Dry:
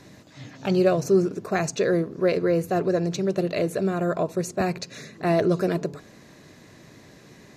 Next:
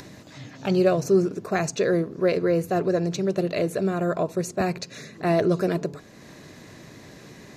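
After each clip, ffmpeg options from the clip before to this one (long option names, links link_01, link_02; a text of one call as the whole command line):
ffmpeg -i in.wav -af "acompressor=mode=upward:threshold=-38dB:ratio=2.5" out.wav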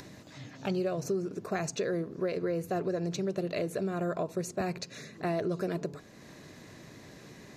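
ffmpeg -i in.wav -af "acompressor=threshold=-23dB:ratio=6,volume=-5dB" out.wav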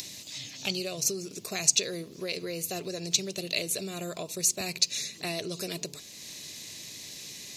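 ffmpeg -i in.wav -af "aexciter=amount=11.4:drive=3.6:freq=2300,volume=-5dB" out.wav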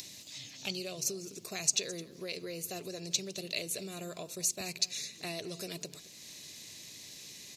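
ffmpeg -i in.wav -af "aecho=1:1:213:0.126,volume=-6dB" out.wav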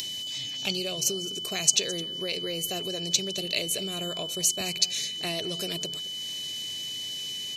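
ffmpeg -i in.wav -af "aeval=exprs='val(0)+0.01*sin(2*PI*3000*n/s)':channel_layout=same,volume=7dB" out.wav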